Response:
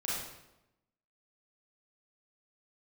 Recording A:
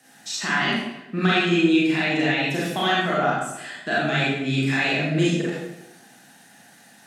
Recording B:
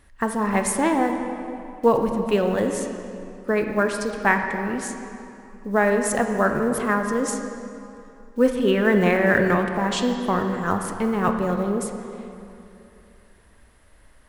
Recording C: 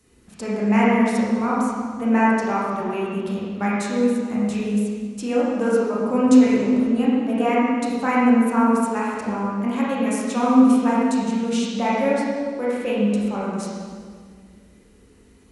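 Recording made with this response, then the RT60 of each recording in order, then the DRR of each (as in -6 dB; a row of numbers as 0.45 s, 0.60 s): A; 0.90 s, 2.8 s, 1.9 s; -7.5 dB, 4.5 dB, -7.0 dB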